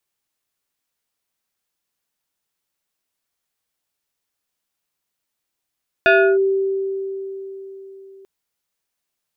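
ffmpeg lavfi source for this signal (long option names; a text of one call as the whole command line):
ffmpeg -f lavfi -i "aevalsrc='0.376*pow(10,-3*t/4.02)*sin(2*PI*388*t+1.9*clip(1-t/0.32,0,1)*sin(2*PI*2.72*388*t))':duration=2.19:sample_rate=44100" out.wav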